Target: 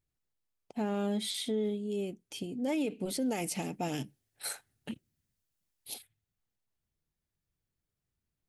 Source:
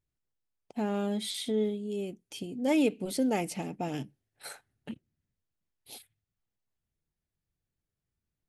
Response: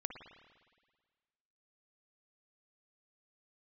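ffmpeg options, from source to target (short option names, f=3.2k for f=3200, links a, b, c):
-filter_complex "[0:a]asettb=1/sr,asplit=3[a][b][c];[a]atrim=end=3.304[d];[b]atrim=start=3.3:end=5.94,asetpts=PTS-STARTPTS,afade=t=in:d=0.004:c=qsin,afade=t=out:st=2.636:d=0.004:c=qsin,highshelf=f=3.4k:g=9.5[e];[c]atrim=start=5.936[f];[d][e]acrossfade=d=0.004:c1=hsin:c2=qsin[g];[g][f]acrossfade=d=0.004:c1=qsin:c2=hsin,alimiter=level_in=1dB:limit=-24dB:level=0:latency=1:release=42,volume=-1dB"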